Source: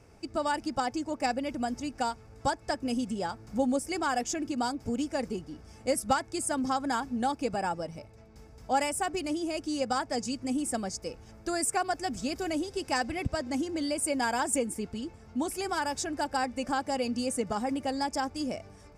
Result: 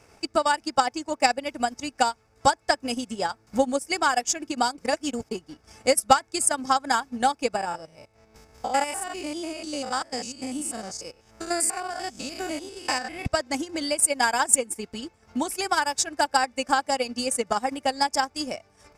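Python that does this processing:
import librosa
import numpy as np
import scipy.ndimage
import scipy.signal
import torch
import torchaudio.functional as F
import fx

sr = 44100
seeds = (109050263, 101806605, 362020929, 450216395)

y = fx.spec_steps(x, sr, hold_ms=100, at=(7.56, 13.26))
y = fx.edit(y, sr, fx.reverse_span(start_s=4.78, length_s=0.53), tone=tone)
y = fx.low_shelf(y, sr, hz=460.0, db=-11.5)
y = fx.transient(y, sr, attack_db=6, sustain_db=-11)
y = y * 10.0 ** (7.5 / 20.0)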